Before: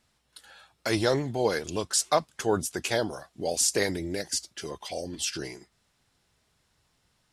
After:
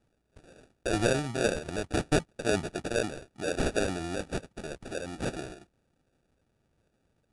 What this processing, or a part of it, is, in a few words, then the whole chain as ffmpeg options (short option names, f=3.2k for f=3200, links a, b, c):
crushed at another speed: -af "asetrate=88200,aresample=44100,acrusher=samples=21:mix=1:aa=0.000001,asetrate=22050,aresample=44100,volume=-2dB"